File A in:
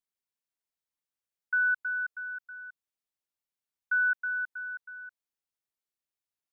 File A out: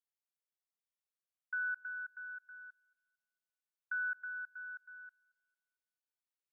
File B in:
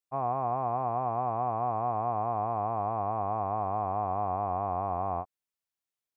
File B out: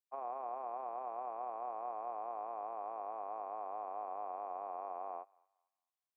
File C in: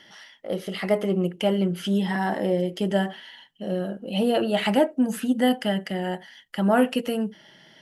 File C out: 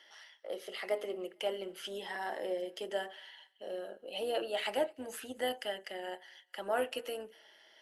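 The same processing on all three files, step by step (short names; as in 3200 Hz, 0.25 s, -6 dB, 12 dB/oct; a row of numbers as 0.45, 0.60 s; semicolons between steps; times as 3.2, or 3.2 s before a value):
HPF 400 Hz 24 dB/oct; dynamic EQ 970 Hz, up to -4 dB, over -36 dBFS, Q 0.88; AM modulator 160 Hz, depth 15%; thinning echo 0.226 s, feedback 43%, high-pass 1000 Hz, level -24 dB; gain -7 dB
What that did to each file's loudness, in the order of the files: -10.5, -12.0, -13.5 LU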